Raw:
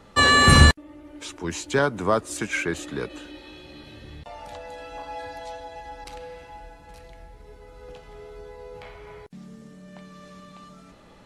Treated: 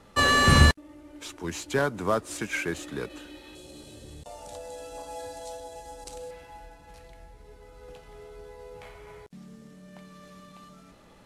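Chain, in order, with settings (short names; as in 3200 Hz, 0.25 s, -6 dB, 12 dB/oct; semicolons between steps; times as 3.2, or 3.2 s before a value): CVSD 64 kbps; 3.55–6.31 graphic EQ 500/1000/2000/8000 Hz +5/-3/-8/+12 dB; gain -3.5 dB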